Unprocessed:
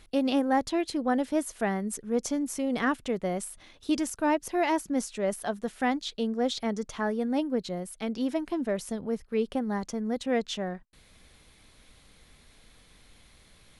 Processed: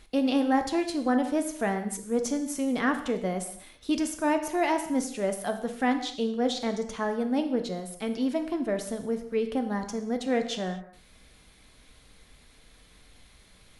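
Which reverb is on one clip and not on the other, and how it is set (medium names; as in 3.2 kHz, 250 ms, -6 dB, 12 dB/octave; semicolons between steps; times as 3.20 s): gated-style reverb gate 270 ms falling, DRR 6 dB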